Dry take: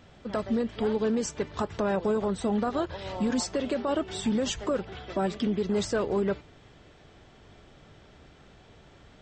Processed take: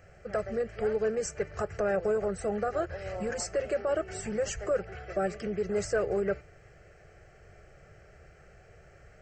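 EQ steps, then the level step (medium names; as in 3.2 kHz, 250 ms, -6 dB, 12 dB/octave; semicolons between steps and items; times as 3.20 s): static phaser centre 970 Hz, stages 6; +1.5 dB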